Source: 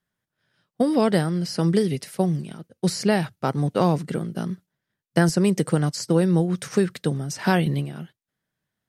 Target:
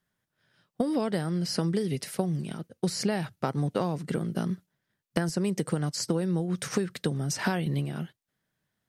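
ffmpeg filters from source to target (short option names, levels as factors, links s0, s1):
-af "acompressor=threshold=0.0501:ratio=6,volume=1.19"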